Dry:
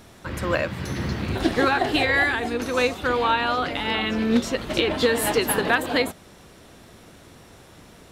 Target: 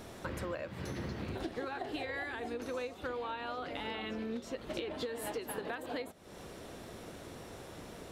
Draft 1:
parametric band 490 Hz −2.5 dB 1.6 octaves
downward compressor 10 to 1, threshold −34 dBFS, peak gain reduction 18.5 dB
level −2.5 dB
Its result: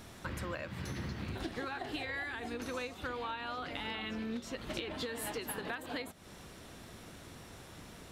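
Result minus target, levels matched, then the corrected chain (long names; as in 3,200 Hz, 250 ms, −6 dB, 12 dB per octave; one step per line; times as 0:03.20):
500 Hz band −4.5 dB
parametric band 490 Hz +5.5 dB 1.6 octaves
downward compressor 10 to 1, threshold −34 dBFS, peak gain reduction 23 dB
level −2.5 dB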